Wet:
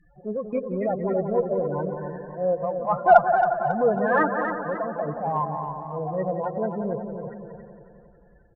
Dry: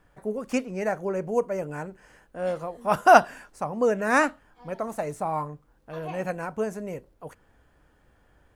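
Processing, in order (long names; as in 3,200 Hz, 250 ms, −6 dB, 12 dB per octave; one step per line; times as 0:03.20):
low-pass filter 2,600 Hz 12 dB per octave
low-shelf EQ 400 Hz −4 dB
comb filter 5.8 ms, depth 39%
spectral peaks only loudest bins 8
in parallel at −2 dB: downward compressor, threshold −37 dBFS, peak gain reduction 24.5 dB
on the sum: harmonic generator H 6 −40 dB, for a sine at −3.5 dBFS
transient designer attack −6 dB, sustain −2 dB
on a send: bucket-brigade delay 179 ms, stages 2,048, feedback 62%, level −8.5 dB
on the sum: feedback echo with a swinging delay time 273 ms, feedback 41%, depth 63 cents, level −8 dB
level +4 dB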